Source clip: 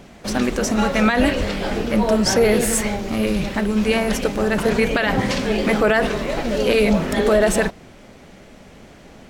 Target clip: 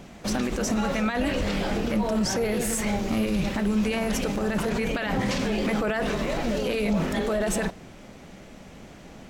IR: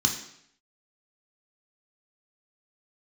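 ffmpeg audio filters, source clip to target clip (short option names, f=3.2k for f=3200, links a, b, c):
-filter_complex "[0:a]alimiter=limit=-16dB:level=0:latency=1:release=47,asplit=2[a][b];[1:a]atrim=start_sample=2205,asetrate=66150,aresample=44100[c];[b][c]afir=irnorm=-1:irlink=0,volume=-24.5dB[d];[a][d]amix=inputs=2:normalize=0,volume=-1.5dB"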